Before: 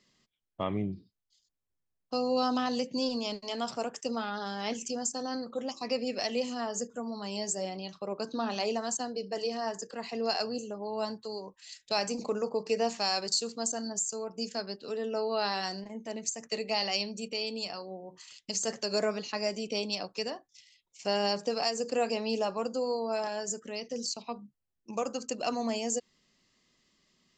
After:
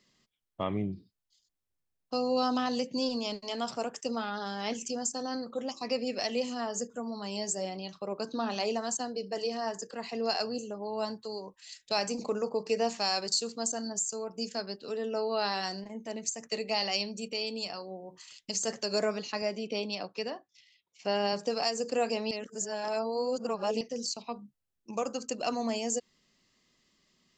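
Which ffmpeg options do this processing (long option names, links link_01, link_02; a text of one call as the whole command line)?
ffmpeg -i in.wav -filter_complex "[0:a]asettb=1/sr,asplit=3[link_01][link_02][link_03];[link_01]atrim=end=19.424[link_04];[link_02]atrim=start=19.42:end=21.33,asetpts=PTS-STARTPTS,afade=type=in:duration=0.004:curve=qsin,afade=type=out:start_time=1.906:duration=0.004:curve=qsin,highpass=110,lowpass=4100[link_05];[link_03]atrim=start=21.326[link_06];[link_04][link_05]acrossfade=duration=0.004:curve1=hsin:curve2=qsin[link_07];[link_07][link_06]acrossfade=duration=0.004:curve1=qsin:curve2=hsin,asplit=3[link_08][link_09][link_10];[link_08]atrim=end=22.312[link_11];[link_09]atrim=start=22.308:end=23.812,asetpts=PTS-STARTPTS,areverse[link_12];[link_10]atrim=start=23.808[link_13];[link_11][link_12]acrossfade=duration=0.004:curve1=hsin:curve2=hsin[link_14];[link_14][link_13]acrossfade=duration=0.004:curve1=hsin:curve2=hsin" out.wav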